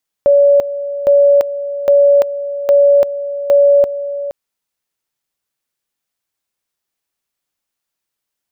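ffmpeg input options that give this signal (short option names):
-f lavfi -i "aevalsrc='pow(10,(-5.5-13*gte(mod(t,0.81),0.34))/20)*sin(2*PI*568*t)':d=4.05:s=44100"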